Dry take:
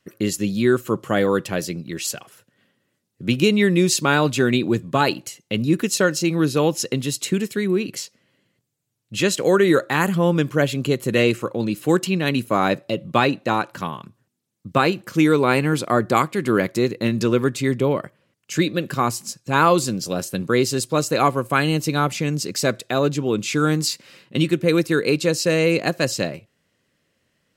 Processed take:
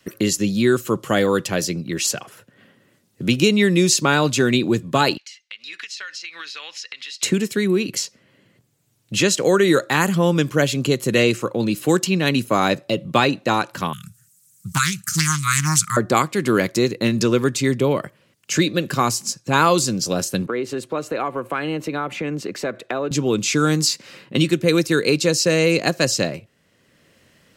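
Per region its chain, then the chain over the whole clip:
5.17–7.23 Chebyshev band-pass 1900–4900 Hz + compressor, threshold -38 dBFS
13.93–15.97 brick-wall FIR band-stop 200–1200 Hz + resonant high shelf 5200 Hz +14 dB, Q 1.5 + Doppler distortion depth 0.43 ms
20.46–23.11 three-band isolator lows -13 dB, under 230 Hz, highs -19 dB, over 2600 Hz + notch 5000 Hz, Q 16 + compressor 2.5:1, threshold -27 dBFS
whole clip: dynamic EQ 6000 Hz, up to +7 dB, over -42 dBFS, Q 1.1; three-band squash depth 40%; gain +1 dB

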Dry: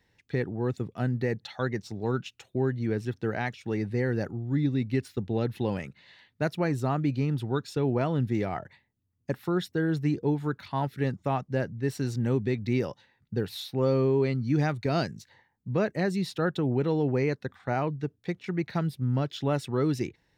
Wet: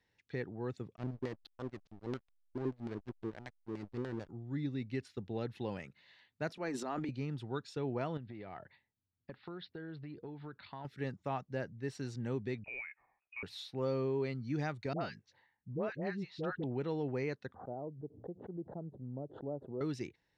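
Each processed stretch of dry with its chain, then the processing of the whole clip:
0.96–4.29 LFO low-pass square 6.8 Hz 330–4500 Hz + backlash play -26 dBFS + upward expander, over -42 dBFS
6.49–7.09 steep high-pass 180 Hz 48 dB/oct + transient shaper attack -4 dB, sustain +12 dB
8.17–10.85 steep low-pass 4700 Hz 72 dB/oct + compressor 10:1, threshold -31 dBFS
12.64–13.43 HPF 360 Hz + compressor 1.5:1, threshold -38 dBFS + inverted band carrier 2700 Hz
14.93–16.64 air absorption 180 m + dispersion highs, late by 81 ms, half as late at 900 Hz
17.54–19.81 inverse Chebyshev low-pass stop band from 2200 Hz, stop band 60 dB + low shelf 190 Hz -9.5 dB + backwards sustainer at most 110 dB/s
whole clip: LPF 7100 Hz 12 dB/oct; low shelf 320 Hz -5 dB; gain -8 dB

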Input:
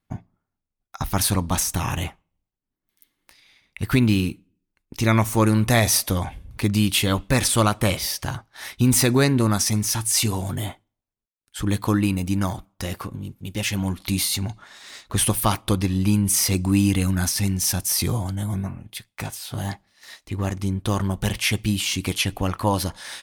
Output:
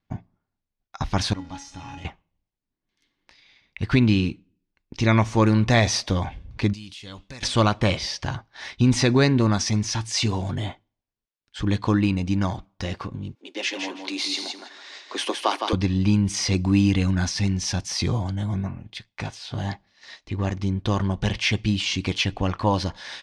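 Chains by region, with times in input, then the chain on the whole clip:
1.33–2.05 zero-crossing step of -25.5 dBFS + resonator 280 Hz, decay 0.34 s, harmonics odd, mix 90%
6.73–7.43 pre-emphasis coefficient 0.8 + compressor 4:1, threshold -34 dBFS
13.35–15.73 steep high-pass 280 Hz 48 dB/oct + feedback echo 0.162 s, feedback 18%, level -5.5 dB
whole clip: LPF 5700 Hz 24 dB/oct; notch 1300 Hz, Q 13

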